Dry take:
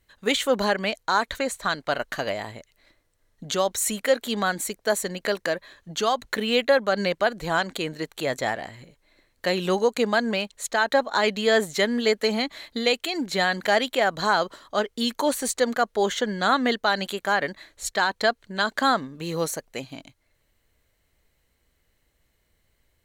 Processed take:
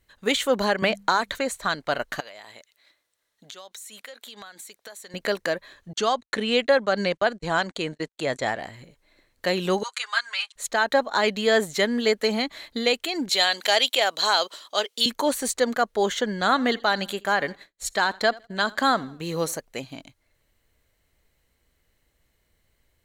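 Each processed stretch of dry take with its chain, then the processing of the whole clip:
0.82–1.35 notches 50/100/150/200 Hz + three-band squash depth 100%
2.2–5.14 HPF 1100 Hz 6 dB/oct + bell 3700 Hz +4.5 dB 0.33 oct + compressor 10:1, threshold -38 dBFS
5.93–8.6 LPF 9600 Hz 24 dB/oct + gate -38 dBFS, range -47 dB
9.83–10.56 Chebyshev band-pass 1200–9900 Hz, order 3 + comb 7.5 ms, depth 85%
13.29–15.06 HPF 470 Hz + resonant high shelf 2300 Hz +7 dB, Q 1.5
16.41–19.57 feedback echo 81 ms, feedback 45%, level -22.5 dB + expander -41 dBFS
whole clip: dry

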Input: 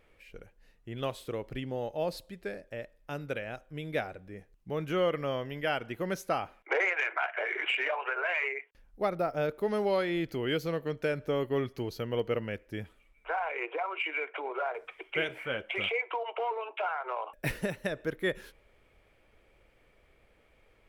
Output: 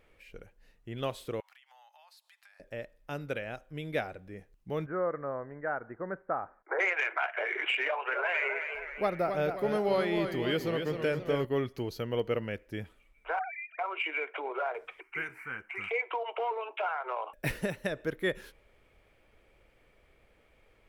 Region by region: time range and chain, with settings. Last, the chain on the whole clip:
1.4–2.6 steep high-pass 820 Hz 48 dB/oct + compressor 8:1, threshold -56 dBFS
4.86–6.79 steep low-pass 1700 Hz 48 dB/oct + low shelf 400 Hz -8.5 dB
7.85–11.45 notch 5700 Hz, Q 30 + warbling echo 0.265 s, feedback 50%, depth 111 cents, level -7 dB
13.39–13.79 sine-wave speech + brick-wall FIR high-pass 660 Hz + bell 890 Hz -13 dB 0.26 oct
15–15.91 low shelf 390 Hz -7 dB + fixed phaser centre 1400 Hz, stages 4
whole clip: dry

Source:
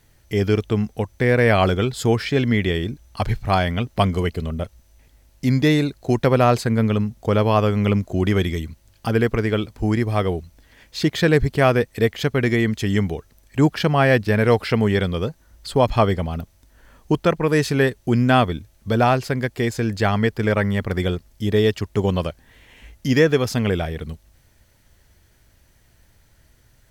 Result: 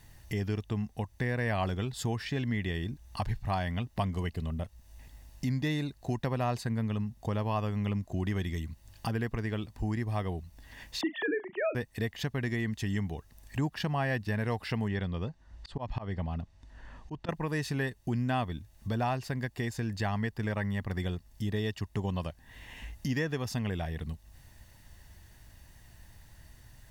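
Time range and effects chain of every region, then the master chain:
11.01–11.75 sine-wave speech + doubler 37 ms -13.5 dB
14.88–17.29 auto swell 0.228 s + air absorption 110 m
whole clip: comb 1.1 ms, depth 43%; compressor 2:1, threshold -40 dBFS

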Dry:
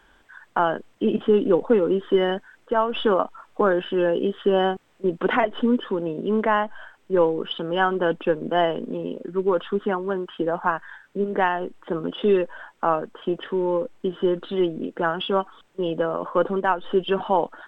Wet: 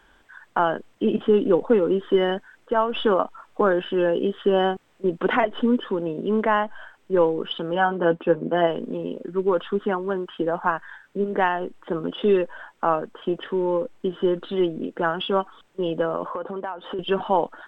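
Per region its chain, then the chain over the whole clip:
7.74–8.67 HPF 41 Hz 6 dB/oct + high shelf 2800 Hz -10.5 dB + doubler 12 ms -6 dB
16.3–16.99 HPF 50 Hz 6 dB/oct + bell 820 Hz +7 dB 1.9 oct + compressor, threshold -27 dBFS
whole clip: dry

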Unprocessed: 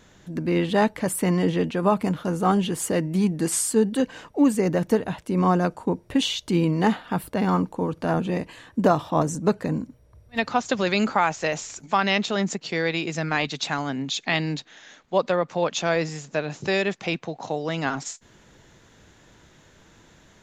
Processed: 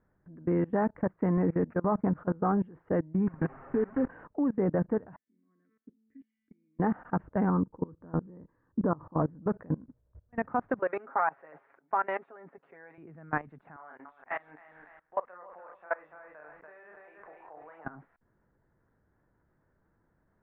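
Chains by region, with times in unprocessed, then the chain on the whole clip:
1.37–2.17 expander -31 dBFS + careless resampling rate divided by 8×, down none, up filtered
3.27–4.08 delta modulation 16 kbps, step -26 dBFS + notches 60/120/180 Hz + comb 7.4 ms, depth 74%
5.16–6.79 vowel filter i + bell 1800 Hz +10 dB 0.62 oct + resonator 220 Hz, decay 0.62 s, mix 90%
7.5–9.19 LPF 1100 Hz + bell 700 Hz -11.5 dB 0.51 oct
10.79–12.98 HPF 460 Hz + comb 7.3 ms, depth 63% + decimation joined by straight lines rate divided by 2×
13.76–17.85 HPF 860 Hz + doubler 33 ms -4 dB + lo-fi delay 0.289 s, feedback 35%, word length 8-bit, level -5 dB
whole clip: low shelf 130 Hz +4 dB; level quantiser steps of 23 dB; steep low-pass 1700 Hz 36 dB/oct; gain -2.5 dB

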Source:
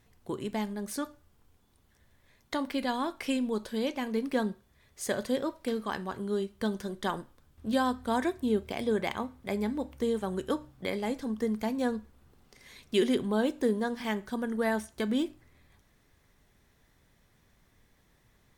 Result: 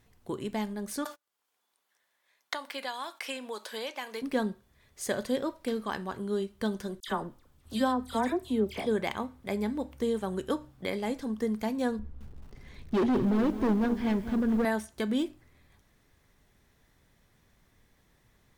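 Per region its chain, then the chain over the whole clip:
1.05–4.22 gate -55 dBFS, range -34 dB + HPF 720 Hz + three-band squash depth 100%
7–8.86 notch 1600 Hz, Q 17 + dispersion lows, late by 77 ms, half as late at 1800 Hz
11.99–14.65 RIAA curve playback + hard clip -23 dBFS + lo-fi delay 0.216 s, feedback 55%, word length 8-bit, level -11.5 dB
whole clip: dry

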